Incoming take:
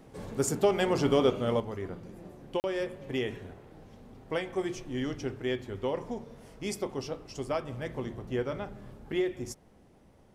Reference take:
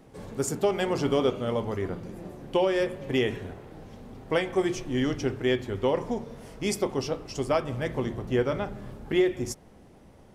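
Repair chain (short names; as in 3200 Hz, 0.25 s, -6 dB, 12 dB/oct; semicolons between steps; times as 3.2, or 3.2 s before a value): interpolate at 2.6, 39 ms; gain correction +6.5 dB, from 1.6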